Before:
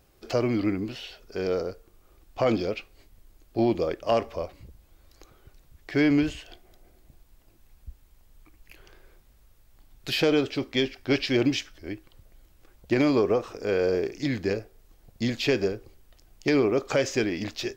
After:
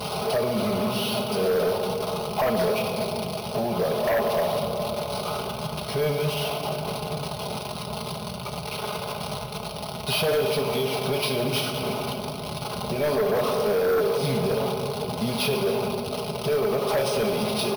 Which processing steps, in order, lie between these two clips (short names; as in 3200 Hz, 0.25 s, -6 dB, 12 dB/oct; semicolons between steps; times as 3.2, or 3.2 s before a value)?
delta modulation 32 kbps, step -29 dBFS; air absorption 140 m; comb 4.8 ms, depth 63%; limiter -21 dBFS, peak gain reduction 11 dB; HPF 110 Hz 24 dB/oct; fixed phaser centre 740 Hz, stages 4; shoebox room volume 190 m³, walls hard, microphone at 0.33 m; sine folder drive 8 dB, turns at -18.5 dBFS; careless resampling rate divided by 3×, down filtered, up hold